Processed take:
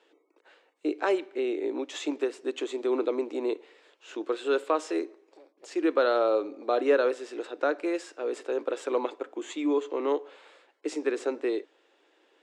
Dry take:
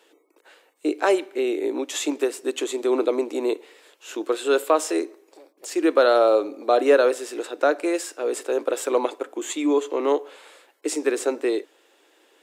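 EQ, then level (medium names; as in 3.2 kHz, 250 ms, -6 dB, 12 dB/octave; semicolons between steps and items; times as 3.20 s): dynamic bell 670 Hz, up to -4 dB, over -31 dBFS, Q 3; distance through air 110 m; -5.0 dB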